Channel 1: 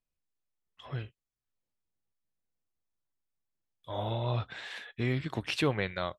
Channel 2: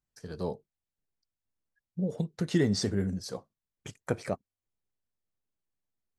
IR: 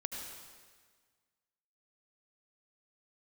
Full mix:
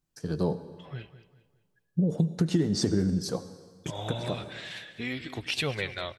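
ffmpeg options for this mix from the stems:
-filter_complex "[0:a]equalizer=frequency=1100:width_type=o:width=0.77:gain=-3,flanger=delay=1.4:depth=4.1:regen=-42:speed=0.53:shape=triangular,adynamicequalizer=threshold=0.00251:dfrequency=1800:dqfactor=0.7:tfrequency=1800:tqfactor=0.7:attack=5:release=100:ratio=0.375:range=3.5:mode=boostabove:tftype=highshelf,volume=1dB,asplit=4[link_01][link_02][link_03][link_04];[link_02]volume=-20dB[link_05];[link_03]volume=-14dB[link_06];[1:a]equalizer=frequency=160:width_type=o:width=0.33:gain=9,equalizer=frequency=315:width_type=o:width=0.33:gain=9,equalizer=frequency=2000:width_type=o:width=0.33:gain=-4,acompressor=threshold=-26dB:ratio=10,volume=3dB,asplit=2[link_07][link_08];[link_08]volume=-8.5dB[link_09];[link_04]apad=whole_len=272655[link_10];[link_07][link_10]sidechaincompress=threshold=-41dB:ratio=8:attack=16:release=390[link_11];[2:a]atrim=start_sample=2205[link_12];[link_05][link_09]amix=inputs=2:normalize=0[link_13];[link_13][link_12]afir=irnorm=-1:irlink=0[link_14];[link_06]aecho=0:1:201|402|603|804|1005:1|0.34|0.116|0.0393|0.0134[link_15];[link_01][link_11][link_14][link_15]amix=inputs=4:normalize=0"

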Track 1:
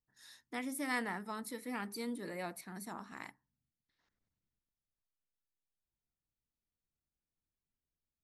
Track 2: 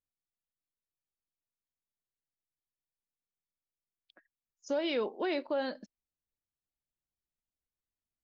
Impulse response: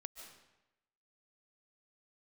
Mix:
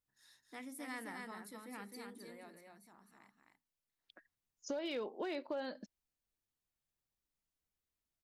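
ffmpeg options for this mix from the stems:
-filter_complex "[0:a]bandreject=frequency=60:width_type=h:width=6,bandreject=frequency=120:width_type=h:width=6,bandreject=frequency=180:width_type=h:width=6,bandreject=frequency=240:width_type=h:width=6,volume=2dB,afade=type=out:start_time=1.92:duration=0.73:silence=0.316228,afade=type=in:start_time=3.78:duration=0.64:silence=0.298538,asplit=2[link_01][link_02];[link_02]volume=-4.5dB[link_03];[1:a]volume=1dB[link_04];[link_03]aecho=0:1:260:1[link_05];[link_01][link_04][link_05]amix=inputs=3:normalize=0,asoftclip=type=hard:threshold=-23.5dB,acompressor=threshold=-40dB:ratio=3"

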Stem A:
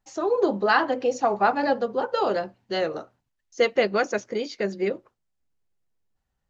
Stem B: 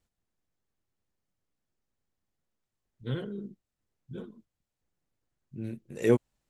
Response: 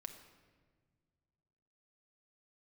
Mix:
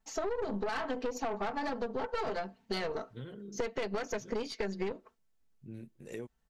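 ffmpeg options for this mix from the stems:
-filter_complex "[0:a]aecho=1:1:4.5:0.97,alimiter=limit=-13dB:level=0:latency=1:release=105,aeval=exprs='(tanh(12.6*val(0)+0.65)-tanh(0.65))/12.6':channel_layout=same,volume=1.5dB[link_01];[1:a]acompressor=threshold=-32dB:ratio=8,adelay=100,volume=-7.5dB[link_02];[link_01][link_02]amix=inputs=2:normalize=0,acompressor=threshold=-31dB:ratio=6"

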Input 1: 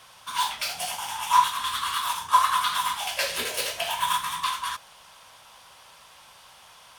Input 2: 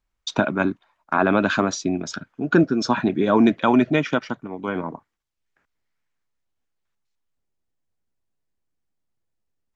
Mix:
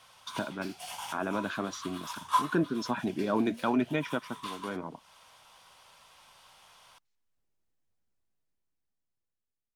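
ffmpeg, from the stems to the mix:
ffmpeg -i stem1.wav -i stem2.wav -filter_complex "[0:a]highshelf=frequency=11000:gain=-4.5,bandreject=frequency=1700:width=23,volume=-2dB[link_01];[1:a]dynaudnorm=framelen=590:gausssize=7:maxgain=15.5dB,volume=-10.5dB,asplit=2[link_02][link_03];[link_03]apad=whole_len=307959[link_04];[link_01][link_04]sidechaincompress=threshold=-40dB:ratio=12:attack=44:release=321[link_05];[link_05][link_02]amix=inputs=2:normalize=0,flanger=delay=1.2:depth=5.5:regen=-80:speed=1:shape=sinusoidal" out.wav

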